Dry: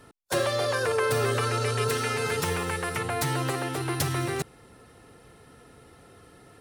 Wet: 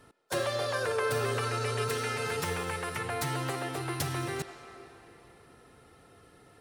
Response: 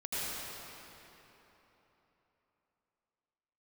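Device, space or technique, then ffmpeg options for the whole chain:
filtered reverb send: -filter_complex "[0:a]asplit=2[link_01][link_02];[link_02]highpass=380,lowpass=6900[link_03];[1:a]atrim=start_sample=2205[link_04];[link_03][link_04]afir=irnorm=-1:irlink=0,volume=-14dB[link_05];[link_01][link_05]amix=inputs=2:normalize=0,volume=-5.5dB"

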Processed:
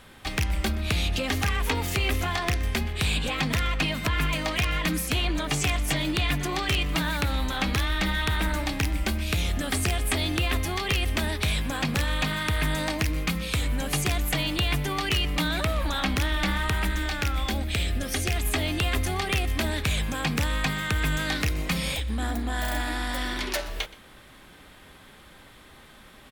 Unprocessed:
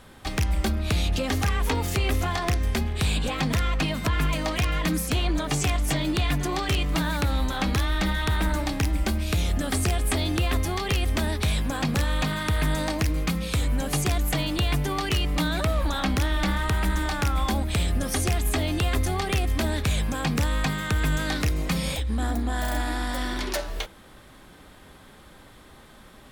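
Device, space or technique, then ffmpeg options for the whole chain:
presence and air boost: -filter_complex "[0:a]asettb=1/sr,asplit=3[link_01][link_02][link_03];[link_01]atrim=end=16.874[link_04];[link_02]atrim=start=16.87:end=18.36,asetpts=PTS-STARTPTS,afade=type=in:duration=0.004:curve=qsin,afade=type=out:start_time=1.486:duration=0.004:curve=qsin,equalizer=frequency=160:width_type=o:width=0.67:gain=-5,equalizer=frequency=1000:width_type=o:width=0.67:gain=-7,equalizer=frequency=10000:width_type=o:width=0.67:gain=-4[link_05];[link_03]atrim=start=18.356[link_06];[link_04][link_05]acrossfade=duration=0.004:curve1=hsin:curve2=qsin[link_07];[link_07][link_06]acrossfade=duration=0.004:curve1=qsin:curve2=hsin,equalizer=frequency=2500:width_type=o:width=1.5:gain=6,highshelf=frequency=12000:gain=5.5,aecho=1:1:123:0.1,volume=-2.5dB"

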